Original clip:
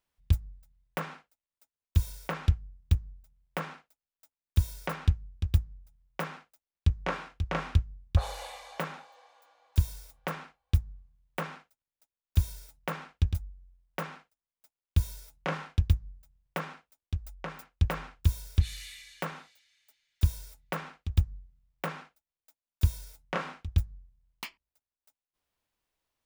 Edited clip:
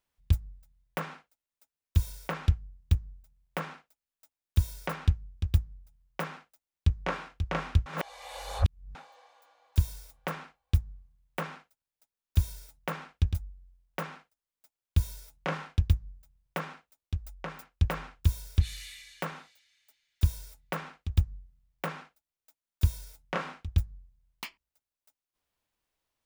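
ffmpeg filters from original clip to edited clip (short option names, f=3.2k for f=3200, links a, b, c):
-filter_complex "[0:a]asplit=3[a][b][c];[a]atrim=end=7.862[d];[b]atrim=start=7.858:end=8.952,asetpts=PTS-STARTPTS,areverse[e];[c]atrim=start=8.948[f];[d][e]acrossfade=d=0.004:c1=hsin:c2=hsin[g];[g][f]acrossfade=d=0.004:c1=hsin:c2=hsin"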